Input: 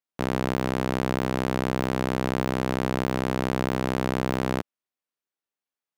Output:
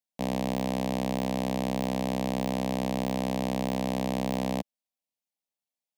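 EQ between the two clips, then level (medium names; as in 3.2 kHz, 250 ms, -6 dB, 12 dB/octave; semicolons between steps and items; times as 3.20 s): static phaser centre 370 Hz, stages 6; 0.0 dB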